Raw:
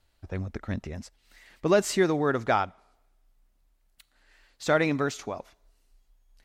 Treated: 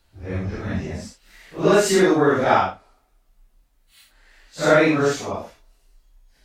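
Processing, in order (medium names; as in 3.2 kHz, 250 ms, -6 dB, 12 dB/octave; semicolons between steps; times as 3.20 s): phase randomisation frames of 200 ms; trim +7.5 dB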